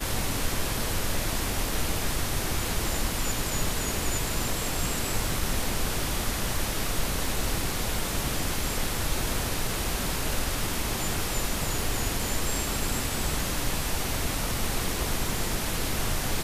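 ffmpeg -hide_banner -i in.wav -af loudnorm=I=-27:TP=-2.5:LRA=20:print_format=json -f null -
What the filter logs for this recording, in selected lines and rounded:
"input_i" : "-28.8",
"input_tp" : "-13.1",
"input_lra" : "0.4",
"input_thresh" : "-38.8",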